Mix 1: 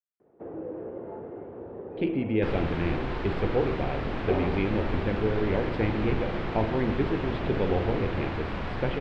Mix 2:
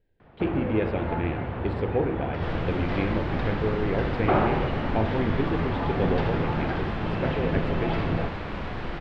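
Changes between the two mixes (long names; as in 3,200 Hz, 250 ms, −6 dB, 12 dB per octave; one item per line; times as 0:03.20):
speech: entry −1.60 s
first sound: remove resonant band-pass 400 Hz, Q 2.7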